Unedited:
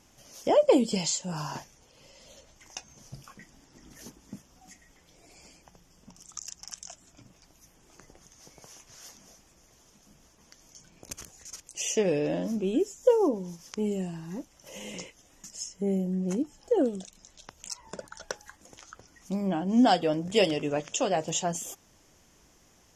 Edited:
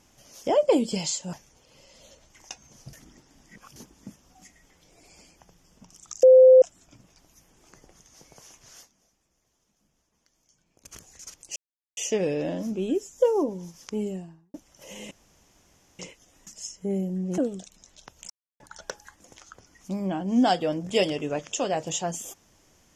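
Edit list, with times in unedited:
1.33–1.59 cut
3.19–4.02 reverse
6.49–6.88 bleep 516 Hz -9 dBFS
9.03–11.22 dip -13.5 dB, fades 0.12 s
11.82 insert silence 0.41 s
13.82–14.39 studio fade out
14.96 insert room tone 0.88 s
16.35–16.79 cut
17.71–18.01 mute

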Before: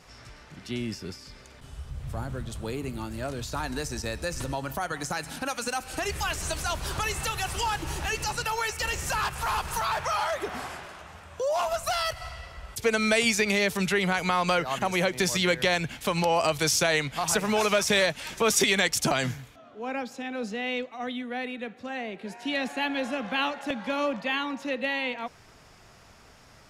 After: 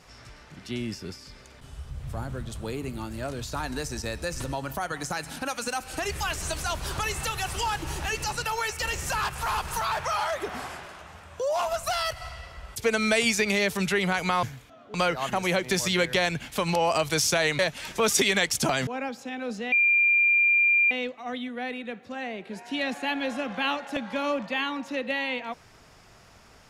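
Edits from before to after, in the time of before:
17.08–18.01 cut
19.29–19.8 move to 14.43
20.65 add tone 2390 Hz -17.5 dBFS 1.19 s

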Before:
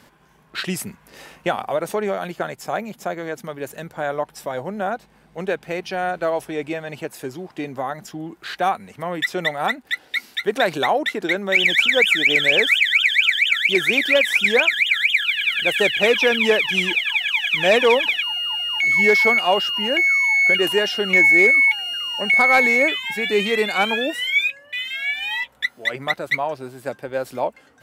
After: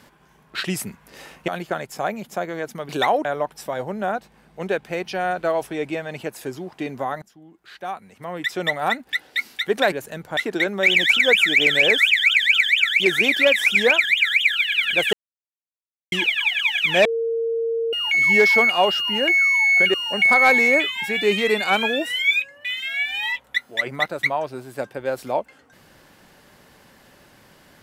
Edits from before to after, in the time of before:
1.48–2.17 cut
3.58–4.03 swap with 10.7–11.06
8–9.49 fade in quadratic, from -17 dB
15.82–16.81 mute
17.74–18.62 bleep 458 Hz -20 dBFS
20.63–22.02 cut

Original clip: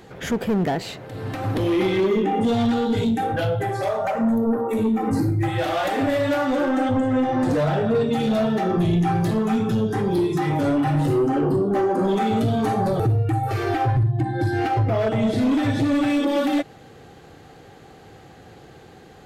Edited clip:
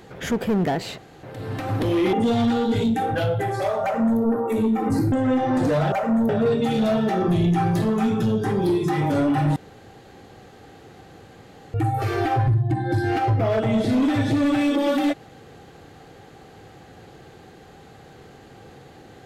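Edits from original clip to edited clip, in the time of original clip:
0.98 insert room tone 0.25 s
1.88–2.34 cut
4.04–4.41 copy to 7.78
5.33–6.98 cut
11.05–13.23 room tone

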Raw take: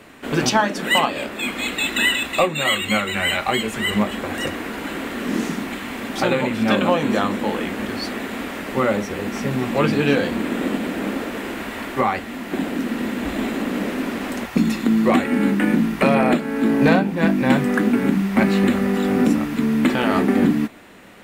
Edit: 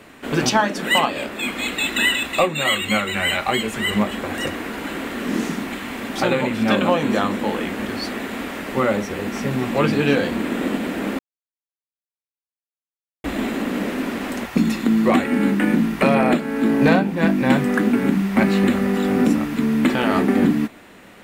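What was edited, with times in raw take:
11.19–13.24 mute

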